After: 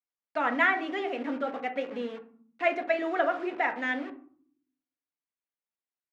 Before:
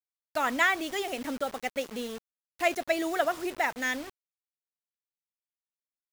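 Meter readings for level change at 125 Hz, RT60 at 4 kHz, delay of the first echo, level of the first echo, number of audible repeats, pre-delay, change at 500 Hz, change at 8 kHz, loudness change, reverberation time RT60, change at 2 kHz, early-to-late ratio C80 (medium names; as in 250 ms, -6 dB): no reading, 0.25 s, no echo, no echo, no echo, 4 ms, +1.0 dB, under -20 dB, +0.5 dB, 0.50 s, +0.5 dB, 16.5 dB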